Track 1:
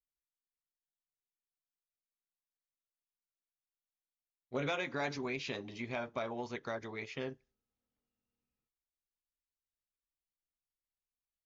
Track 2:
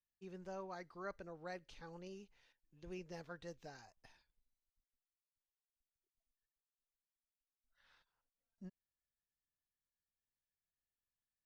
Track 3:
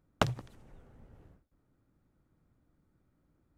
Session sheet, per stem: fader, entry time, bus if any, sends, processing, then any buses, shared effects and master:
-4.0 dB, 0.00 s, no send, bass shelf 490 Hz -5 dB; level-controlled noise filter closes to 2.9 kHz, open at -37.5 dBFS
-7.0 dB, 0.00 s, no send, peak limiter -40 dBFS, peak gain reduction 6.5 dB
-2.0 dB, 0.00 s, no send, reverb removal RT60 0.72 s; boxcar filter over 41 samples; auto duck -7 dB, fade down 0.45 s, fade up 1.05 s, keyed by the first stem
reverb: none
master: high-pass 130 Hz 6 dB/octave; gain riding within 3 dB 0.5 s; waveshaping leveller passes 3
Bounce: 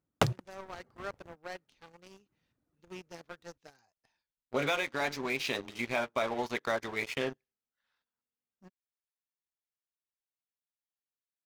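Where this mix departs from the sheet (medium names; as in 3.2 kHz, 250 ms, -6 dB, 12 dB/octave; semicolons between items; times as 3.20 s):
stem 2: missing peak limiter -40 dBFS, peak gain reduction 6.5 dB; stem 3: missing boxcar filter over 41 samples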